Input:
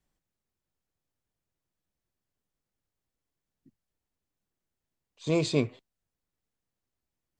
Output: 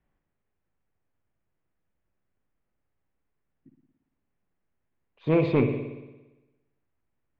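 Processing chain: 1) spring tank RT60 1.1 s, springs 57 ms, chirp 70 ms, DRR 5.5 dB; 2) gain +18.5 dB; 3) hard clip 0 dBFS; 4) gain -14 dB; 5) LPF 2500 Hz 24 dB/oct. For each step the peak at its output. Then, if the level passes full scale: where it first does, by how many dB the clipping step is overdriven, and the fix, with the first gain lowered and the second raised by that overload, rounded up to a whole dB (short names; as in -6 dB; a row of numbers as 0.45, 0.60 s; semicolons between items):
-12.0, +6.5, 0.0, -14.0, -13.0 dBFS; step 2, 6.5 dB; step 2 +11.5 dB, step 4 -7 dB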